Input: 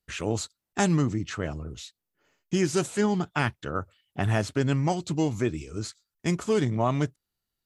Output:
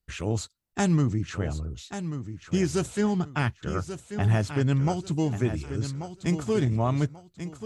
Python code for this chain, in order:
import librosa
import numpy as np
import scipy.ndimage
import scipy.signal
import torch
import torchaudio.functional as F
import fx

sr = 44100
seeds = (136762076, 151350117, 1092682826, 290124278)

p1 = fx.low_shelf(x, sr, hz=130.0, db=11.5)
p2 = p1 + fx.echo_feedback(p1, sr, ms=1137, feedback_pct=28, wet_db=-10.0, dry=0)
y = F.gain(torch.from_numpy(p2), -3.0).numpy()